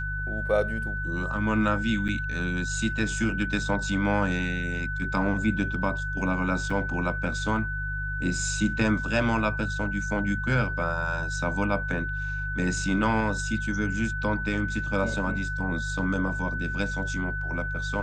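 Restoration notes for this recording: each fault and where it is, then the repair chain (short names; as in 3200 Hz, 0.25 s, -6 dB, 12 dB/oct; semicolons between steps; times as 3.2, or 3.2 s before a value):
hum 50 Hz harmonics 3 -33 dBFS
tone 1500 Hz -31 dBFS
2.08–2.09 gap 7.9 ms
6.7 gap 4.5 ms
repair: de-hum 50 Hz, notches 3; notch 1500 Hz, Q 30; interpolate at 2.08, 7.9 ms; interpolate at 6.7, 4.5 ms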